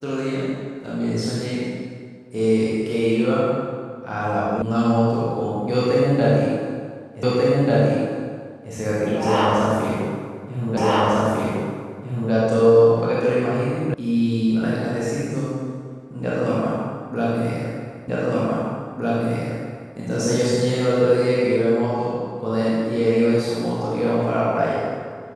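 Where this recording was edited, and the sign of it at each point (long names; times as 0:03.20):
0:04.62: cut off before it has died away
0:07.23: the same again, the last 1.49 s
0:10.77: the same again, the last 1.55 s
0:13.94: cut off before it has died away
0:18.08: the same again, the last 1.86 s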